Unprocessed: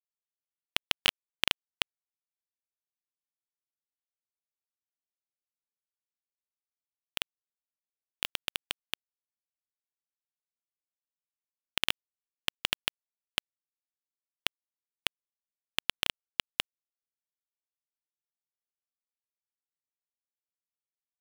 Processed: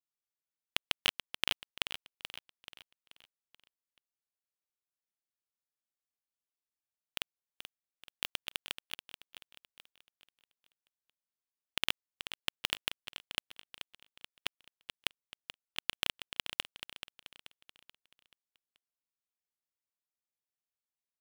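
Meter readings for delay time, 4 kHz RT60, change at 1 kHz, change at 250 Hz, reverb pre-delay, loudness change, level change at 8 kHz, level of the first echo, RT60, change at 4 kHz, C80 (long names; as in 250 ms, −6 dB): 432 ms, no reverb audible, −3.5 dB, −3.5 dB, no reverb audible, −4.5 dB, −3.5 dB, −11.0 dB, no reverb audible, −3.5 dB, no reverb audible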